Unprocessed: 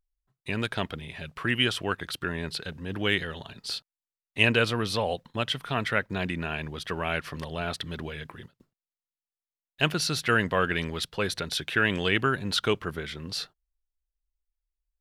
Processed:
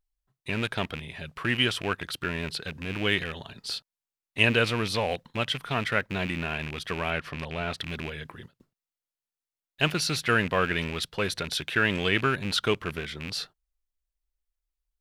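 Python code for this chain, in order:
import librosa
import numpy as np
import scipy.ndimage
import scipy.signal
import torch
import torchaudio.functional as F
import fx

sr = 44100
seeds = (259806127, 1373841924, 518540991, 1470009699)

y = fx.rattle_buzz(x, sr, strikes_db=-34.0, level_db=-24.0)
y = fx.high_shelf(y, sr, hz=6000.0, db=-9.5, at=(7.1, 7.78))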